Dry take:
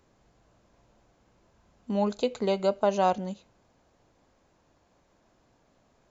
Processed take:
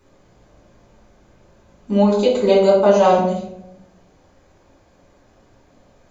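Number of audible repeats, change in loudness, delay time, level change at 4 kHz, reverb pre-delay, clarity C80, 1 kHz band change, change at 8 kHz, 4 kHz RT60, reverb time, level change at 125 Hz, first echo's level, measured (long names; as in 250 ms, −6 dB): no echo audible, +12.0 dB, no echo audible, +10.0 dB, 3 ms, 7.0 dB, +9.0 dB, can't be measured, 0.45 s, 0.80 s, can't be measured, no echo audible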